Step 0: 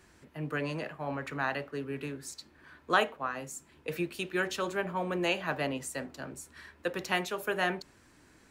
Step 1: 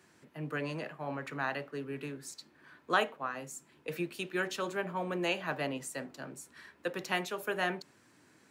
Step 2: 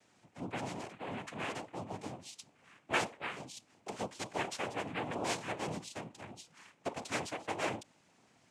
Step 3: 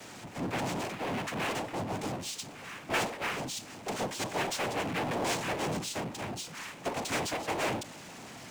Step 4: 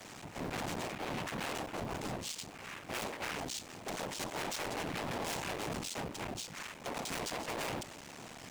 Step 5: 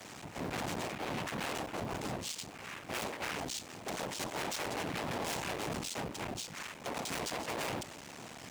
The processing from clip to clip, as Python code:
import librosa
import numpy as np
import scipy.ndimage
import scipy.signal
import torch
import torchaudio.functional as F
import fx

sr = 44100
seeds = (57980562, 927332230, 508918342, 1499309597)

y1 = scipy.signal.sosfilt(scipy.signal.butter(4, 110.0, 'highpass', fs=sr, output='sos'), x)
y1 = y1 * 10.0 ** (-2.5 / 20.0)
y2 = fx.notch(y1, sr, hz=1700.0, q=9.1)
y2 = fx.noise_vocoder(y2, sr, seeds[0], bands=4)
y2 = y2 * 10.0 ** (-3.0 / 20.0)
y3 = fx.power_curve(y2, sr, exponent=0.5)
y3 = y3 * 10.0 ** (-3.0 / 20.0)
y4 = fx.cycle_switch(y3, sr, every=3, mode='muted')
y4 = np.clip(10.0 ** (34.5 / 20.0) * y4, -1.0, 1.0) / 10.0 ** (34.5 / 20.0)
y4 = y4 * 10.0 ** (-1.0 / 20.0)
y5 = scipy.signal.sosfilt(scipy.signal.butter(2, 42.0, 'highpass', fs=sr, output='sos'), y4)
y5 = y5 * 10.0 ** (1.0 / 20.0)